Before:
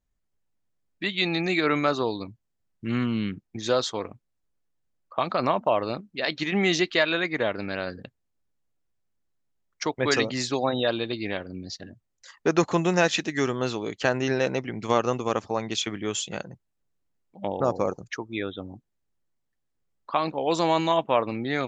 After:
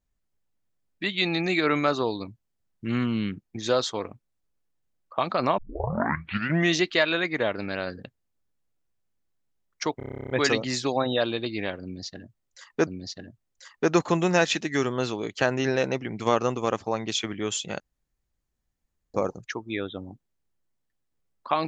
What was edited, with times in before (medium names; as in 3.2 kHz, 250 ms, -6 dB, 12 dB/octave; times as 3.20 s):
5.58 s: tape start 1.17 s
9.97 s: stutter 0.03 s, 12 plays
11.50–12.54 s: loop, 2 plays
16.43–17.77 s: room tone